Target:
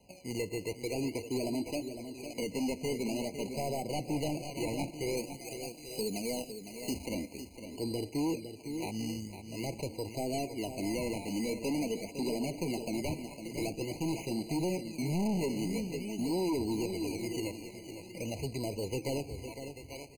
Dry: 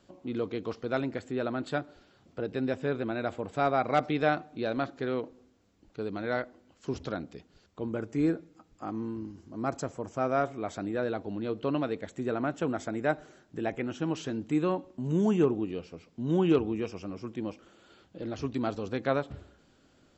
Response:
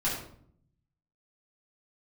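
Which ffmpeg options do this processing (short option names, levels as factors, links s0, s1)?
-filter_complex "[0:a]asoftclip=type=tanh:threshold=0.0841,flanger=delay=1.4:depth=4.9:regen=-29:speed=0.11:shape=triangular,aecho=1:1:837|1674|2511:0.158|0.0555|0.0194,acrusher=samples=19:mix=1:aa=0.000001:lfo=1:lforange=19:lforate=0.47,asettb=1/sr,asplit=3[s0][s1][s2];[s0]atrim=end=5.174[s3];[s1]atrim=start=5.17:end=7.06,asetpts=PTS-STARTPTS,afade=t=in:d=0.004:c=qsin,afade=t=out:st=1.886:d=0.004:c=qsin,highshelf=f=3300:g=9.5[s4];[s2]atrim=start=7.056[s5];[s3][s4]acrossfade=d=0.004:c1=hsin:c2=qsin[s6];[s6][s5]acrossfade=d=0.004:c1=qsin:c2=hsin,acrossover=split=480[s7][s8];[s8]acompressor=threshold=0.00562:ratio=4[s9];[s7][s9]amix=inputs=2:normalize=0,aecho=1:1:507:0.316,volume=44.7,asoftclip=hard,volume=0.0224,equalizer=f=6900:w=0.35:g=9.5,afftfilt=real='re*eq(mod(floor(b*sr/1024/1000),2),0)':imag='im*eq(mod(floor(b*sr/1024/1000),2),0)':win_size=1024:overlap=0.75,volume=1.58"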